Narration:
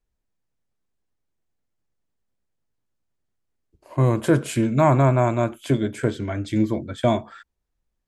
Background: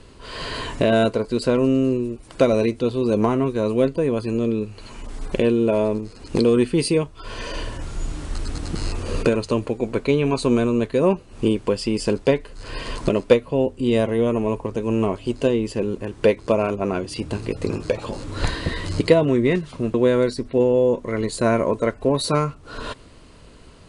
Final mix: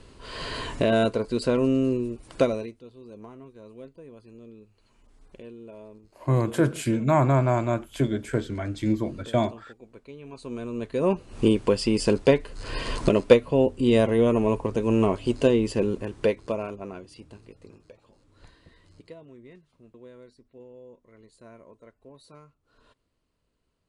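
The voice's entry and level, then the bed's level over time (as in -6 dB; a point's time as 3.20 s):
2.30 s, -3.5 dB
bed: 2.42 s -4 dB
2.83 s -25 dB
10.15 s -25 dB
11.28 s -0.5 dB
15.84 s -0.5 dB
18.06 s -30 dB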